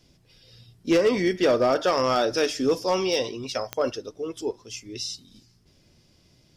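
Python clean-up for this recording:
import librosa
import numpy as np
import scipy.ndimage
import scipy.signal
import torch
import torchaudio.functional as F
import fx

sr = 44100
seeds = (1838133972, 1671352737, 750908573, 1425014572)

y = fx.fix_declip(x, sr, threshold_db=-14.5)
y = fx.fix_declick_ar(y, sr, threshold=10.0)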